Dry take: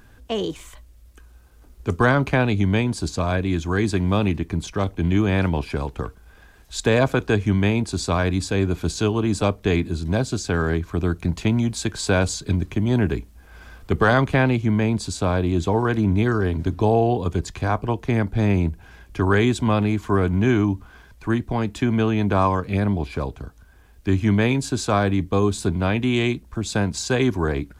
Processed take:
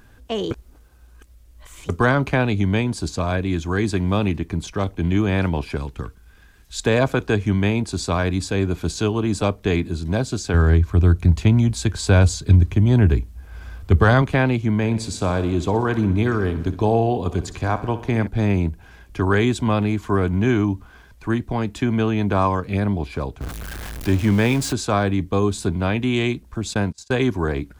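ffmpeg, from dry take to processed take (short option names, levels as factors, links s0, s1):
-filter_complex "[0:a]asettb=1/sr,asplit=3[s0][s1][s2];[s0]atrim=end=5.774[s3];[s1]atrim=start=5.77:end=6.8,asetpts=PTS-STARTPTS,afade=t=in:d=0.004:c=qsin,afade=t=out:st=1.026:d=0.004:c=qsin,equalizer=f=660:w=0.88:g=-8.5[s4];[s2]atrim=start=6.796[s5];[s3][s4]acrossfade=d=0.004:c1=hsin:c2=qsin[s6];[s6][s5]acrossfade=d=0.004:c1=qsin:c2=hsin,asettb=1/sr,asplit=3[s7][s8][s9];[s7]atrim=end=10.544[s10];[s8]atrim=start=10.54:end=14.22,asetpts=PTS-STARTPTS,afade=t=in:d=0.004:c=qsin,afade=t=out:st=3.676:d=0.004:c=qsin,equalizer=f=75:t=o:w=1.4:g=12.5[s11];[s9]atrim=start=14.216[s12];[s10][s11]acrossfade=d=0.004:c1=hsin:c2=qsin[s13];[s13][s12]acrossfade=d=0.004:c1=qsin:c2=hsin,asettb=1/sr,asplit=3[s14][s15][s16];[s14]atrim=end=14.754[s17];[s15]atrim=start=14.75:end=18.27,asetpts=PTS-STARTPTS,afade=t=in:d=0.004:c=qsin,afade=t=out:st=3.516:d=0.004:c=qsin,aecho=1:1:62|124|186|248|310|372:0.2|0.12|0.0718|0.0431|0.0259|0.0155,atrim=end_sample=155232[s18];[s16]atrim=start=18.266[s19];[s17][s18]acrossfade=d=0.004:c1=hsin:c2=qsin[s20];[s20][s19]acrossfade=d=0.004:c1=qsin:c2=hsin,asettb=1/sr,asplit=3[s21][s22][s23];[s21]atrim=end=23.414[s24];[s22]atrim=start=23.41:end=24.73,asetpts=PTS-STARTPTS,afade=t=in:d=0.004:c=qsin,afade=t=out:st=1.316:d=0.004:c=qsin,aeval=exprs='val(0)+0.5*0.0473*sgn(val(0))':c=same[s25];[s23]atrim=start=24.726[s26];[s24][s25]acrossfade=d=0.004:c1=hsin:c2=qsin[s27];[s27][s26]acrossfade=d=0.004:c1=qsin:c2=hsin,asplit=3[s28][s29][s30];[s28]afade=t=out:st=26.73:d=0.02[s31];[s29]agate=range=0.0355:threshold=0.0447:ratio=16:release=100:detection=peak,afade=t=in:st=26.73:d=0.02,afade=t=out:st=27.33:d=0.02[s32];[s30]afade=t=in:st=27.33:d=0.02[s33];[s31][s32][s33]amix=inputs=3:normalize=0,asplit=3[s34][s35][s36];[s34]atrim=end=0.512[s37];[s35]atrim=start=0.508:end=1.892,asetpts=PTS-STARTPTS,areverse[s38];[s36]atrim=start=1.888[s39];[s37][s38]acrossfade=d=0.004:c1=hsin:c2=hsin[s40];[s40][s39]acrossfade=d=0.004:c1=hsin:c2=hsin"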